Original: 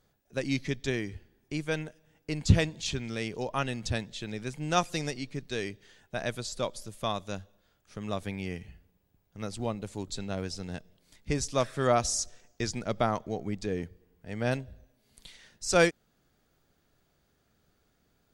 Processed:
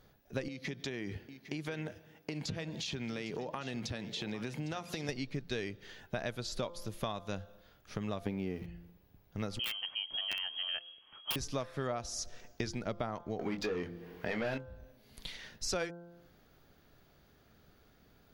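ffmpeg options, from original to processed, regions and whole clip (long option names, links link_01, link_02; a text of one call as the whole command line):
ffmpeg -i in.wav -filter_complex "[0:a]asettb=1/sr,asplit=3[link_01][link_02][link_03];[link_01]atrim=end=0.484[link_04];[link_02]atrim=start=0.48:end=5.09,asetpts=PTS-STARTPTS,afade=type=in:duration=0.004:curve=qsin,afade=type=out:start_time=4.606:duration=0.004:curve=qsin,highpass=130,acompressor=threshold=-39dB:ratio=12:attack=3.2:release=140:knee=1:detection=peak,aecho=1:1:806:0.178,atrim=end_sample=203301[link_05];[link_03]atrim=start=5.086[link_06];[link_04][link_05]acrossfade=duration=0.004:curve1=hsin:curve2=qsin[link_07];[link_07][link_06]acrossfade=duration=0.004:curve1=qsin:curve2=hsin,asettb=1/sr,asplit=3[link_08][link_09][link_10];[link_08]atrim=end=8.264[link_11];[link_09]atrim=start=8.26:end=8.66,asetpts=PTS-STARTPTS,afade=type=in:duration=0.004:curve=qsin,afade=type=out:start_time=0.396:duration=0.004:curve=qsin,aeval=exprs='val(0)+0.5*0.00531*sgn(val(0))':channel_layout=same,equalizer=frequency=310:width=0.58:gain=12[link_12];[link_10]atrim=start=8.656[link_13];[link_11][link_12]acrossfade=duration=0.004:curve1=hsin:curve2=qsin[link_14];[link_14][link_13]acrossfade=duration=0.004:curve1=qsin:curve2=hsin,asettb=1/sr,asplit=3[link_15][link_16][link_17];[link_15]atrim=end=9.594[link_18];[link_16]atrim=start=9.59:end=11.36,asetpts=PTS-STARTPTS,afade=type=in:duration=0.004:curve=qsin,afade=type=out:start_time=1.766:duration=0.004:curve=qsin,equalizer=frequency=320:width=0.57:gain=-3.5,lowpass=frequency=2800:width_type=q:width=0.5098,lowpass=frequency=2800:width_type=q:width=0.6013,lowpass=frequency=2800:width_type=q:width=0.9,lowpass=frequency=2800:width_type=q:width=2.563,afreqshift=-3300,aeval=exprs='(mod(17.8*val(0)+1,2)-1)/17.8':channel_layout=same[link_19];[link_17]atrim=start=11.356[link_20];[link_18][link_19]acrossfade=duration=0.004:curve1=hsin:curve2=qsin[link_21];[link_21][link_20]acrossfade=duration=0.004:curve1=qsin:curve2=hsin,asettb=1/sr,asplit=3[link_22][link_23][link_24];[link_22]atrim=end=13.394[link_25];[link_23]atrim=start=13.39:end=14.58,asetpts=PTS-STARTPTS,afade=type=in:duration=0.004:curve=qsin,afade=type=out:start_time=1.186:duration=0.004:curve=qsin,bandreject=frequency=50:width_type=h:width=6,bandreject=frequency=100:width_type=h:width=6,bandreject=frequency=150:width_type=h:width=6,bandreject=frequency=200:width_type=h:width=6,bandreject=frequency=250:width_type=h:width=6,bandreject=frequency=300:width_type=h:width=6,asplit=2[link_26][link_27];[link_27]highpass=frequency=720:poles=1,volume=23dB,asoftclip=type=tanh:threshold=-17.5dB[link_28];[link_26][link_28]amix=inputs=2:normalize=0,lowpass=frequency=3300:poles=1,volume=-6dB,asplit=2[link_29][link_30];[link_30]adelay=23,volume=-7.5dB[link_31];[link_29][link_31]amix=inputs=2:normalize=0,atrim=end_sample=52479[link_32];[link_24]atrim=start=14.576[link_33];[link_25][link_32]acrossfade=duration=0.004:curve1=hsin:curve2=qsin[link_34];[link_34][link_33]acrossfade=duration=0.004:curve1=qsin:curve2=hsin,equalizer=frequency=8200:width=1.8:gain=-12.5,bandreject=frequency=172.1:width_type=h:width=4,bandreject=frequency=344.2:width_type=h:width=4,bandreject=frequency=516.3:width_type=h:width=4,bandreject=frequency=688.4:width_type=h:width=4,bandreject=frequency=860.5:width_type=h:width=4,bandreject=frequency=1032.6:width_type=h:width=4,bandreject=frequency=1204.7:width_type=h:width=4,bandreject=frequency=1376.8:width_type=h:width=4,bandreject=frequency=1548.9:width_type=h:width=4,acompressor=threshold=-41dB:ratio=8,volume=7dB" out.wav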